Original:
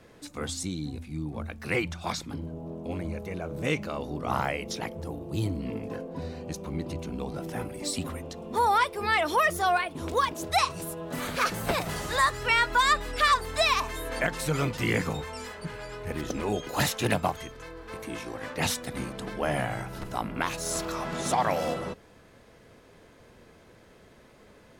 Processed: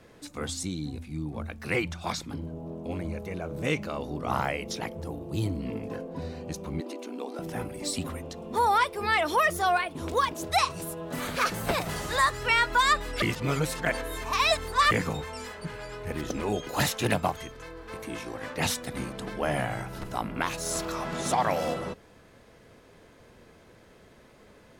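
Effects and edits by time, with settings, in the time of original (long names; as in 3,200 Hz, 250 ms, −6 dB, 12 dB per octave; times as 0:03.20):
0:06.80–0:07.39: linear-phase brick-wall high-pass 220 Hz
0:13.22–0:14.91: reverse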